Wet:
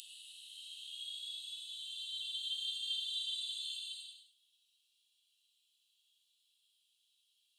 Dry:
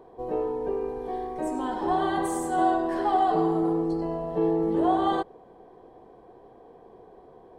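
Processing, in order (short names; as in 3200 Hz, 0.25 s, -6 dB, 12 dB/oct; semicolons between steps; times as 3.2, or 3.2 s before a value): Paulstretch 8.8×, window 0.10 s, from 4.77; rippled Chebyshev high-pass 2700 Hz, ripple 6 dB; gain +9.5 dB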